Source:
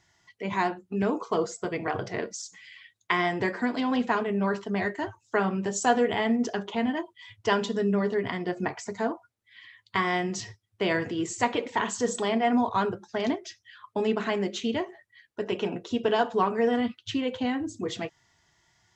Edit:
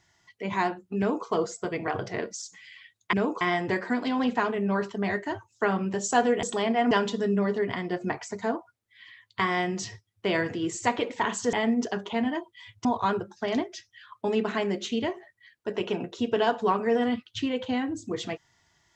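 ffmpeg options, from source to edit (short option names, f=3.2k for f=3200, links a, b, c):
-filter_complex "[0:a]asplit=7[a][b][c][d][e][f][g];[a]atrim=end=3.132[h];[b]atrim=start=0.978:end=1.262[i];[c]atrim=start=3.128:end=6.152[j];[d]atrim=start=12.088:end=12.572[k];[e]atrim=start=7.468:end=12.092[l];[f]atrim=start=6.148:end=7.472[m];[g]atrim=start=12.568[n];[h][i]acrossfade=d=0.004:c1=hsin:c2=hsin[o];[o][j]acrossfade=d=0.004:c1=hsin:c2=hsin[p];[p][k]acrossfade=d=0.004:c1=hsin:c2=hsin[q];[q][l]acrossfade=d=0.004:c1=hsin:c2=hsin[r];[r][m]acrossfade=d=0.004:c1=hsin:c2=hsin[s];[s][n]acrossfade=d=0.004:c1=hsin:c2=hsin"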